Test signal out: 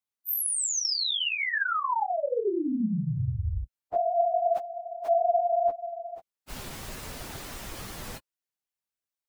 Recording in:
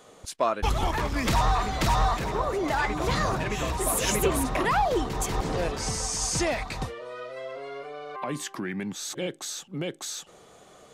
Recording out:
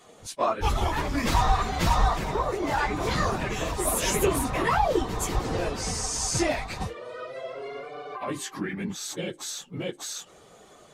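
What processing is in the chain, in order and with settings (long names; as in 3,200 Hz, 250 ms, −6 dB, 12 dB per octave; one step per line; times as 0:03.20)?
random phases in long frames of 50 ms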